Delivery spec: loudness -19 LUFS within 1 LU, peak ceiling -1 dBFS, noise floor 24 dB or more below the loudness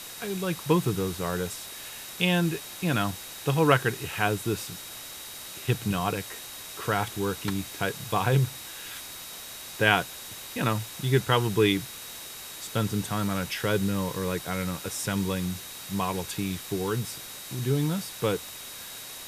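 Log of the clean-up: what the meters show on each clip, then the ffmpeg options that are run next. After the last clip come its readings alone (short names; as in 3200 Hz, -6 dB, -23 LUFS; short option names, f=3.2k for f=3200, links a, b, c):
steady tone 3800 Hz; tone level -47 dBFS; noise floor -41 dBFS; noise floor target -53 dBFS; loudness -29.0 LUFS; peak -5.5 dBFS; loudness target -19.0 LUFS
-> -af "bandreject=f=3.8k:w=30"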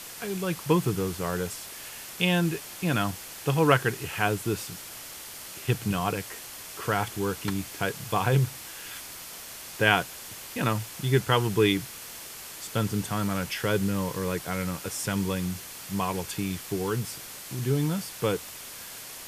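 steady tone none; noise floor -42 dBFS; noise floor target -53 dBFS
-> -af "afftdn=nr=11:nf=-42"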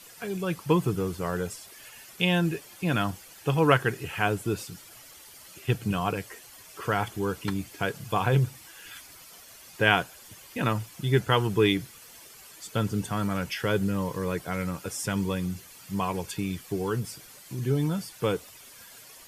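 noise floor -50 dBFS; noise floor target -52 dBFS
-> -af "afftdn=nr=6:nf=-50"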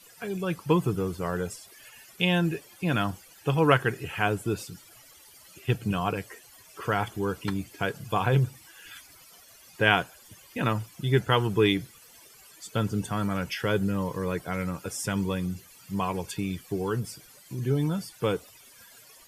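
noise floor -54 dBFS; loudness -28.5 LUFS; peak -5.5 dBFS; loudness target -19.0 LUFS
-> -af "volume=9.5dB,alimiter=limit=-1dB:level=0:latency=1"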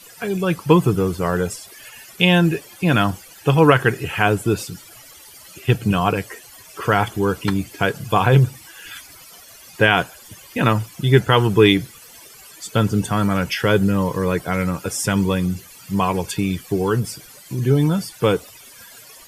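loudness -19.0 LUFS; peak -1.0 dBFS; noise floor -44 dBFS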